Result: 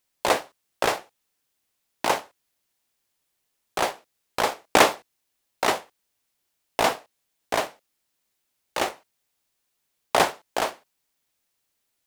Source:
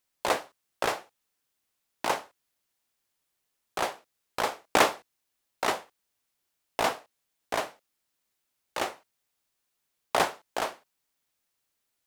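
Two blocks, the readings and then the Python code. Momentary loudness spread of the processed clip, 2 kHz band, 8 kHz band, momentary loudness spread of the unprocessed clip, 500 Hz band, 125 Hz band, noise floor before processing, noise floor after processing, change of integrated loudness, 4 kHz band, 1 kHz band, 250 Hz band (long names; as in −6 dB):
13 LU, +4.5 dB, +5.5 dB, 14 LU, +5.5 dB, +5.5 dB, −80 dBFS, −77 dBFS, +5.0 dB, +5.5 dB, +4.5 dB, +5.5 dB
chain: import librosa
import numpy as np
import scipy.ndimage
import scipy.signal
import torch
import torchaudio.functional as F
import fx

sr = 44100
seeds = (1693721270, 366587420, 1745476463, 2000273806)

p1 = fx.peak_eq(x, sr, hz=1300.0, db=-2.0, octaves=0.77)
p2 = fx.quant_dither(p1, sr, seeds[0], bits=6, dither='none')
p3 = p1 + (p2 * librosa.db_to_amplitude(-11.5))
y = p3 * librosa.db_to_amplitude(3.5)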